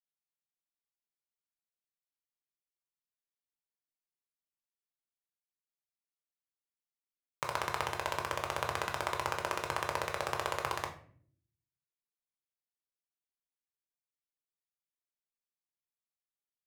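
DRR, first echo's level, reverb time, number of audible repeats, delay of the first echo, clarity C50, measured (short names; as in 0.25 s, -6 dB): 2.0 dB, none, 0.55 s, none, none, 10.0 dB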